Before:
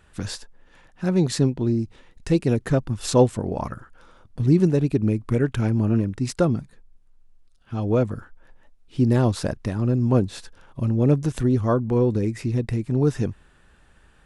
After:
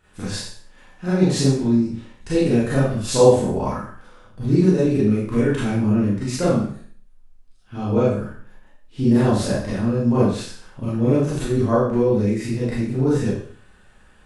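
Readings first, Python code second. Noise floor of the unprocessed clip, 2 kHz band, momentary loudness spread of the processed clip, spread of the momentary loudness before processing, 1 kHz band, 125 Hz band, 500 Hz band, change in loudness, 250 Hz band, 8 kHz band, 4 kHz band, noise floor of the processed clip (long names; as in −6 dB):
−56 dBFS, +5.0 dB, 13 LU, 13 LU, +4.0 dB, 0.0 dB, +4.5 dB, +2.5 dB, +3.5 dB, +4.5 dB, +4.5 dB, −51 dBFS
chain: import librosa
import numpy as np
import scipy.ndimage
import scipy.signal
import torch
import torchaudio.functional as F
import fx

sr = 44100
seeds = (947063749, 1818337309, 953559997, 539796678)

y = fx.spec_trails(x, sr, decay_s=0.33)
y = fx.rev_schroeder(y, sr, rt60_s=0.48, comb_ms=30, drr_db=-8.5)
y = y * librosa.db_to_amplitude(-6.5)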